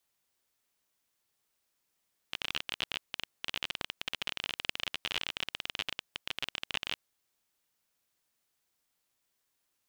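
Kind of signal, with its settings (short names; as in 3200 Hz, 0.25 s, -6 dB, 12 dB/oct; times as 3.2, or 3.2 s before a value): random clicks 29/s -16 dBFS 4.65 s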